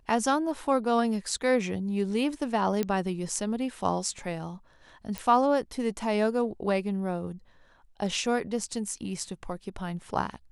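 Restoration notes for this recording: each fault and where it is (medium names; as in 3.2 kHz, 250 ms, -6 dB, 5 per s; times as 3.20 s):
2.83 s: pop -15 dBFS
5.18 s: pop -16 dBFS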